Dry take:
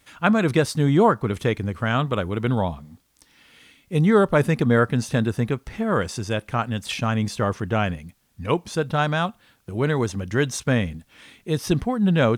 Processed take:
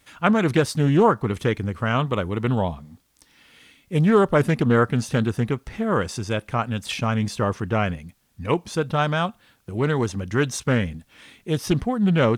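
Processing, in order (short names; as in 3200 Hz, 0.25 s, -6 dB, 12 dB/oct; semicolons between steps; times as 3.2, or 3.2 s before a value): Doppler distortion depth 0.2 ms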